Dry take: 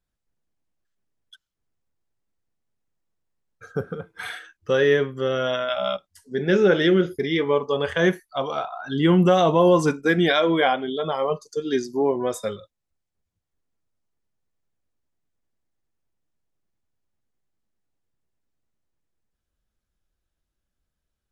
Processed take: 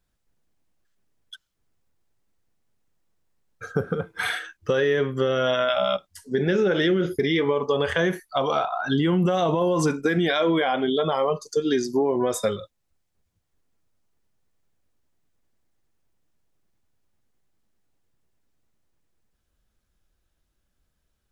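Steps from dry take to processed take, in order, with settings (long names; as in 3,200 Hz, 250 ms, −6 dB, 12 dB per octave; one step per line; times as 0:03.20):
brickwall limiter −16 dBFS, peak gain reduction 10.5 dB
downward compressor 2.5 to 1, threshold −27 dBFS, peak gain reduction 5.5 dB
level +7 dB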